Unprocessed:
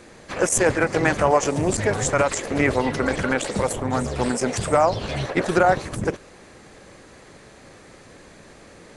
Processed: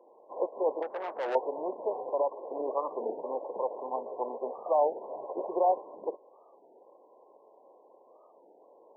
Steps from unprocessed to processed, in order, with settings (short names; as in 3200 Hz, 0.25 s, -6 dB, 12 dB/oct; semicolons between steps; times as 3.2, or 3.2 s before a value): brick-wall FIR low-pass 1100 Hz; 0.82–1.36 tube stage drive 21 dB, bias 0.45; HPF 430 Hz 24 dB/oct; record warp 33 1/3 rpm, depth 250 cents; gain -6.5 dB